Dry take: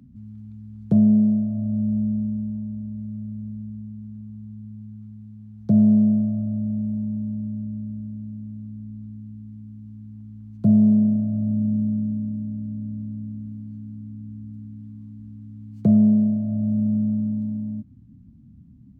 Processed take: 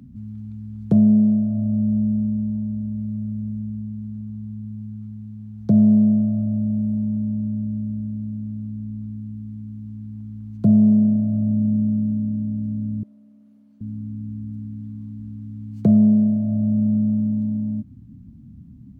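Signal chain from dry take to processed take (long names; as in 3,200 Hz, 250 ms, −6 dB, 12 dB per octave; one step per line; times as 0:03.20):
in parallel at −1 dB: downward compressor, threshold −28 dBFS, peak gain reduction 14.5 dB
0:13.03–0:13.81: on the sum: four-pole ladder high-pass 340 Hz, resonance 30%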